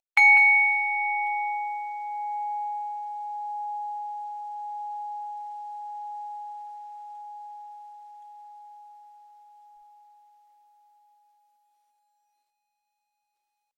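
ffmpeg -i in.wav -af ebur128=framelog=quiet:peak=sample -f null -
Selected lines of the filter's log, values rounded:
Integrated loudness:
  I:         -24.3 LUFS
  Threshold: -37.3 LUFS
Loudness range:
  LRA:        24.4 LU
  Threshold: -53.0 LUFS
  LRA low:   -48.8 LUFS
  LRA high:  -24.4 LUFS
Sample peak:
  Peak:       -7.4 dBFS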